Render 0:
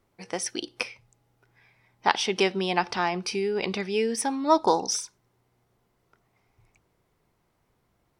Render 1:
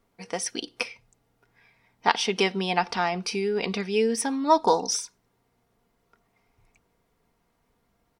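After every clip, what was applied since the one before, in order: comb 4.3 ms, depth 42%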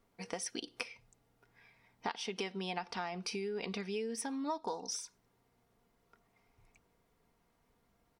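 compression 5:1, threshold -33 dBFS, peak gain reduction 17 dB; trim -3.5 dB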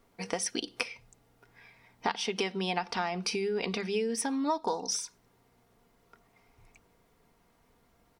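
hum notches 50/100/150/200 Hz; trim +7.5 dB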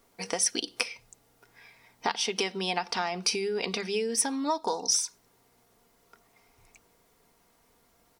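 tone controls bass -5 dB, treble +7 dB; trim +1.5 dB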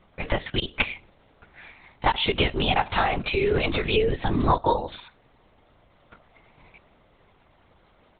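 LPC vocoder at 8 kHz whisper; trim +8 dB

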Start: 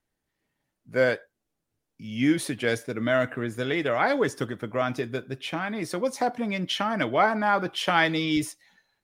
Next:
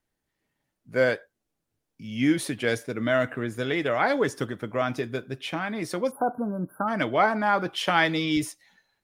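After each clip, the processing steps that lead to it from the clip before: spectral selection erased 6.11–6.88 s, 1.6–10 kHz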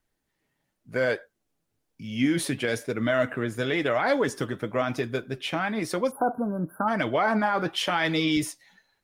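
peak limiter -16.5 dBFS, peak gain reduction 9.5 dB; flange 0.99 Hz, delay 0.6 ms, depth 7.2 ms, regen +70%; trim +6.5 dB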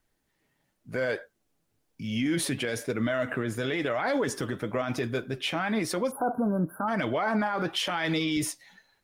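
peak limiter -22.5 dBFS, peak gain reduction 10 dB; trim +3 dB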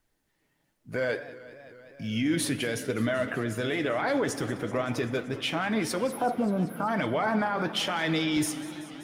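FDN reverb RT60 1.5 s, low-frequency decay 1.5×, high-frequency decay 0.75×, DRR 14.5 dB; modulated delay 191 ms, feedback 80%, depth 205 cents, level -17.5 dB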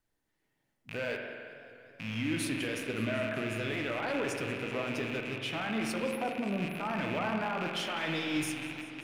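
rattle on loud lows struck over -42 dBFS, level -22 dBFS; spring tank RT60 2 s, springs 45 ms, chirp 60 ms, DRR 3 dB; trim -7.5 dB

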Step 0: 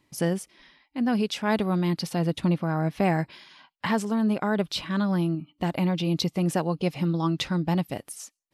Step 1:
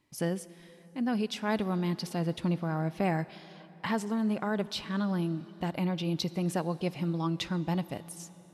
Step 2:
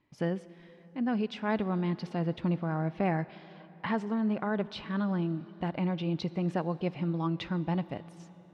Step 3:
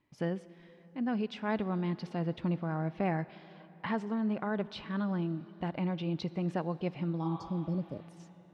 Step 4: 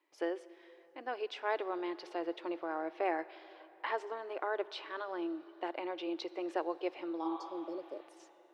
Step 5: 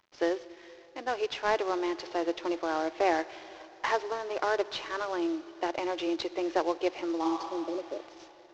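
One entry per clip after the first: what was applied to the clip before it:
reverberation RT60 4.5 s, pre-delay 8 ms, DRR 17 dB; trim -5.5 dB
low-pass 2.8 kHz 12 dB/octave
spectral replace 7.26–8.05 s, 650–4300 Hz both; trim -2.5 dB
elliptic high-pass 330 Hz, stop band 40 dB; trim +1 dB
CVSD coder 32 kbps; trim +7.5 dB

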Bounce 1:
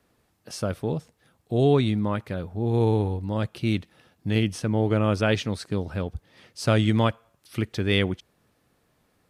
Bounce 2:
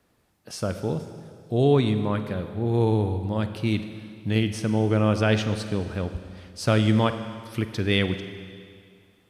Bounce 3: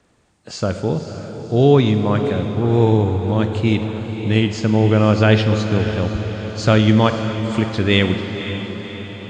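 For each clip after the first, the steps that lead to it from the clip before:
Schroeder reverb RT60 2.2 s, combs from 33 ms, DRR 9 dB
knee-point frequency compression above 3.7 kHz 1.5:1; echo that smears into a reverb 533 ms, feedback 58%, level -10 dB; trim +7 dB

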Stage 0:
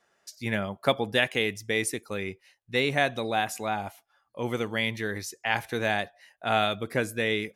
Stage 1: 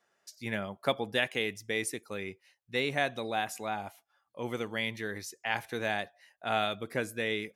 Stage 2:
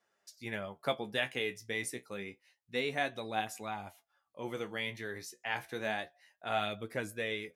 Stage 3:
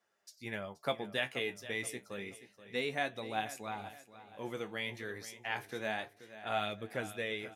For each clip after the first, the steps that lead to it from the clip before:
bass shelf 72 Hz -9.5 dB; trim -5 dB
flange 0.29 Hz, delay 8.9 ms, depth 8.5 ms, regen +45%
feedback delay 478 ms, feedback 40%, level -14.5 dB; trim -1.5 dB

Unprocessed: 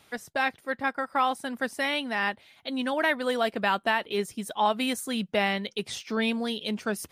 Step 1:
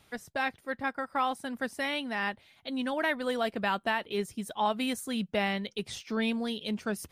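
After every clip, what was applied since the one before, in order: bass shelf 130 Hz +10.5 dB; trim -4.5 dB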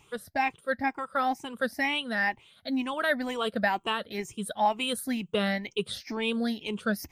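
drifting ripple filter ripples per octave 0.7, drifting +2.1 Hz, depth 15 dB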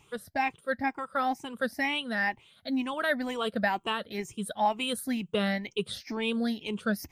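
peaking EQ 150 Hz +2 dB 2 oct; trim -1.5 dB

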